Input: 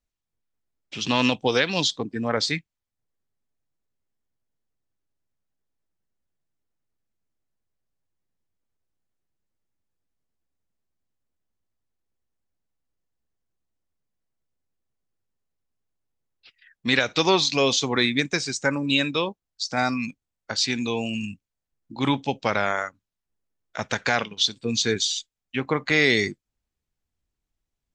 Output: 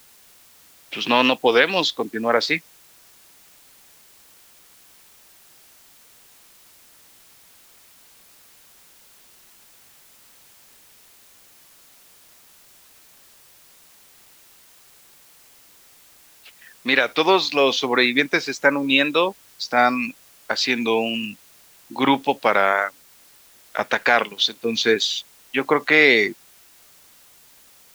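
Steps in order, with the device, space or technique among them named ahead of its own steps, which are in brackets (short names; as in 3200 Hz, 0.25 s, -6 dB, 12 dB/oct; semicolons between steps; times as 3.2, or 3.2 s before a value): dictaphone (BPF 330–3100 Hz; AGC gain up to 9.5 dB; wow and flutter; white noise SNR 27 dB)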